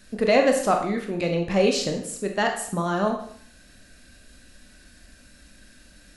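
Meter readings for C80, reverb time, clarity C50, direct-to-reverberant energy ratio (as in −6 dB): 9.5 dB, 0.55 s, 6.5 dB, 3.0 dB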